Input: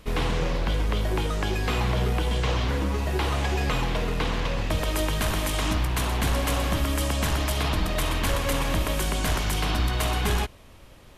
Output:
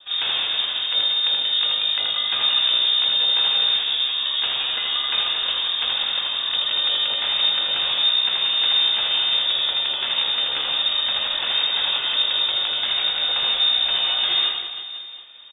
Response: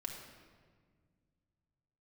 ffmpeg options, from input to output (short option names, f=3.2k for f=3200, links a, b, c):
-filter_complex "[0:a]asplit=2[a][b];[1:a]atrim=start_sample=2205,asetrate=48510,aresample=44100[c];[b][c]afir=irnorm=-1:irlink=0,volume=-12dB[d];[a][d]amix=inputs=2:normalize=0,adynamicequalizer=threshold=0.00398:dfrequency=1400:dqfactor=2.3:tfrequency=1400:tqfactor=2.3:attack=5:release=100:ratio=0.375:range=2.5:mode=cutabove:tftype=bell,atempo=0.72,aecho=1:1:80|184|319.2|495|723.4:0.631|0.398|0.251|0.158|0.1,lowpass=f=3.1k:t=q:w=0.5098,lowpass=f=3.1k:t=q:w=0.6013,lowpass=f=3.1k:t=q:w=0.9,lowpass=f=3.1k:t=q:w=2.563,afreqshift=-3700"